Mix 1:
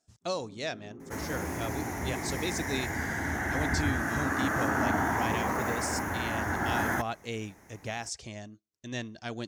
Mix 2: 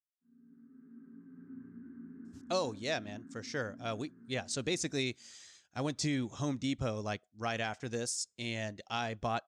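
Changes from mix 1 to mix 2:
speech: entry +2.25 s; first sound: add two resonant band-passes 620 Hz, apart 2.7 oct; second sound: muted

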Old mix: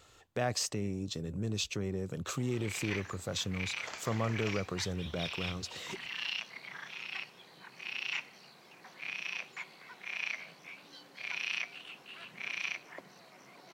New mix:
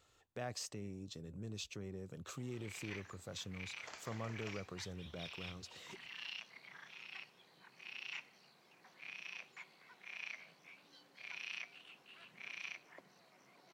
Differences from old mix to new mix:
speech -11.0 dB; first sound -10.0 dB; second sound -7.5 dB

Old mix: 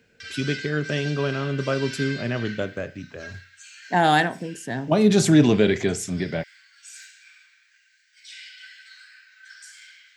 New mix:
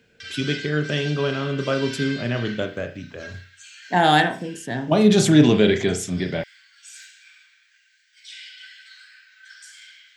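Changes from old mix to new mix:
speech: send +8.5 dB; master: add peaking EQ 3.3 kHz +5.5 dB 0.33 oct

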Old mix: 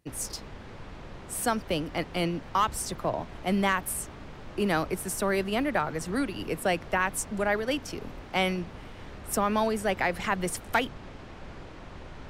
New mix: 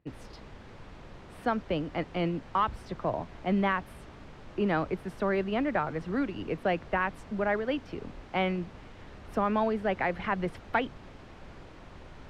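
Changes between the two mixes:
speech: add distance through air 380 m; background -4.5 dB

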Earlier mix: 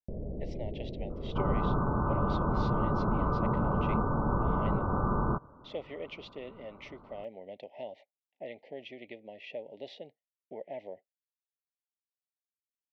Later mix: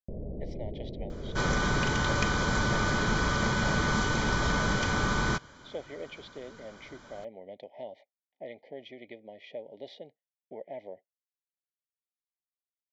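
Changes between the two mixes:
second sound: remove steep low-pass 1.3 kHz 72 dB/octave; master: add Butterworth band-stop 2.7 kHz, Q 6.3

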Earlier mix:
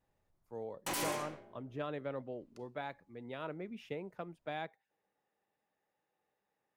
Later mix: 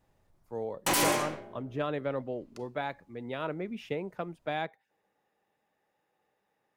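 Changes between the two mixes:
speech +7.5 dB; background +10.5 dB

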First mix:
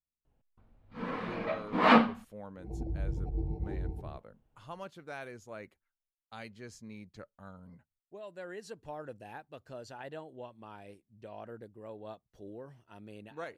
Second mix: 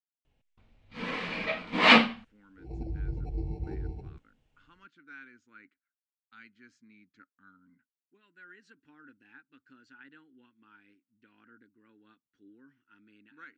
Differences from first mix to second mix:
speech: add two resonant band-passes 630 Hz, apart 2.4 oct; master: add high-order bell 4.1 kHz +12.5 dB 2.4 oct

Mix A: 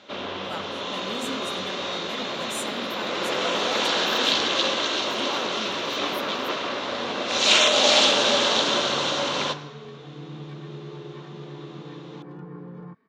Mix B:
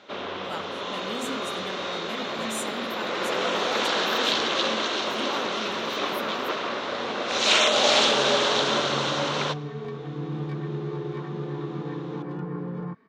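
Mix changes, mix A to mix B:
first sound: send -10.0 dB; second sound +7.0 dB

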